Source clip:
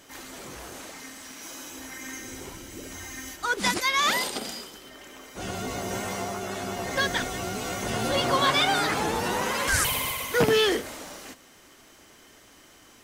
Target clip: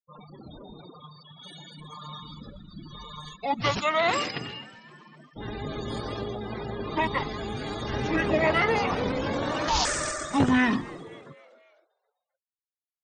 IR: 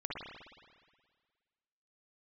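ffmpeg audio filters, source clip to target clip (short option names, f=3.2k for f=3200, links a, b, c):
-filter_complex "[0:a]bandreject=f=60:t=h:w=6,bandreject=f=120:t=h:w=6,bandreject=f=180:t=h:w=6,bandreject=f=240:t=h:w=6,bandreject=f=300:t=h:w=6,bandreject=f=360:t=h:w=6,bandreject=f=420:t=h:w=6,afftfilt=real='re*gte(hypot(re,im),0.0158)':imag='im*gte(hypot(re,im),0.0158)':win_size=1024:overlap=0.75,asetrate=25476,aresample=44100,atempo=1.73107,asplit=2[a][b];[b]asplit=4[c][d][e][f];[c]adelay=259,afreqshift=98,volume=-22dB[g];[d]adelay=518,afreqshift=196,volume=-27.4dB[h];[e]adelay=777,afreqshift=294,volume=-32.7dB[i];[f]adelay=1036,afreqshift=392,volume=-38.1dB[j];[g][h][i][j]amix=inputs=4:normalize=0[k];[a][k]amix=inputs=2:normalize=0"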